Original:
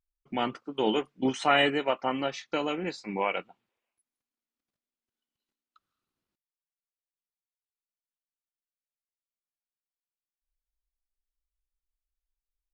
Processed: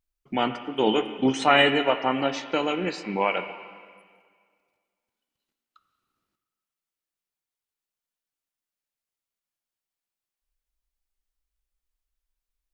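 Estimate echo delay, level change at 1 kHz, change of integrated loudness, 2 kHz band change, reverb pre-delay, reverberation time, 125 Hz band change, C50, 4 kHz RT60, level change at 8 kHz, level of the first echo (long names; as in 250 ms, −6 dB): no echo audible, +5.0 dB, +5.0 dB, +5.5 dB, 6 ms, 1.9 s, +5.5 dB, 10.0 dB, 1.8 s, +4.5 dB, no echo audible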